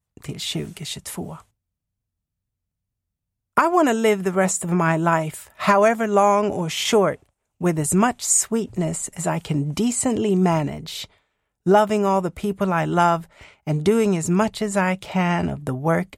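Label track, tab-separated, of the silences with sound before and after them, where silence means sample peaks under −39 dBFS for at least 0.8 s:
1.410000	3.570000	silence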